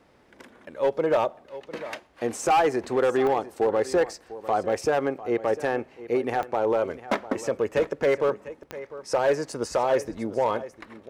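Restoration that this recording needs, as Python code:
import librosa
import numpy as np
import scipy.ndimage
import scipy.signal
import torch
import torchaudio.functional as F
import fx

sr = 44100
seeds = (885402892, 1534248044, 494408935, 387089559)

y = fx.fix_declip(x, sr, threshold_db=-16.0)
y = fx.fix_declick_ar(y, sr, threshold=10.0)
y = fx.fix_interpolate(y, sr, at_s=(8.63, 9.52), length_ms=3.5)
y = fx.fix_echo_inverse(y, sr, delay_ms=700, level_db=-16.0)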